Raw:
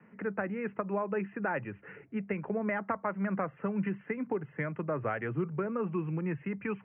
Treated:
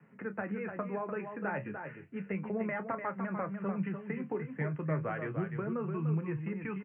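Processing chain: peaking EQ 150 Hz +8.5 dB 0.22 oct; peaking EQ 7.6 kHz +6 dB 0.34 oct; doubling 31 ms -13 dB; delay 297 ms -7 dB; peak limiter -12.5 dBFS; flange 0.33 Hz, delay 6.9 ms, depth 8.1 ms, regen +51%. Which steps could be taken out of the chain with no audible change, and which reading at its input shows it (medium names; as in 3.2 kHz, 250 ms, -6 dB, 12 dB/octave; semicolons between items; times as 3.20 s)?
peaking EQ 7.6 kHz: input has nothing above 2.2 kHz; peak limiter -12.5 dBFS: peak at its input -17.5 dBFS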